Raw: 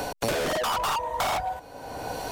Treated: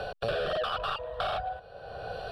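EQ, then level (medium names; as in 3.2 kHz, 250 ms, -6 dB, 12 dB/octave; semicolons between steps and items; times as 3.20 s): low-pass 3.9 kHz 12 dB/octave; static phaser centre 1.4 kHz, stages 8; -1.5 dB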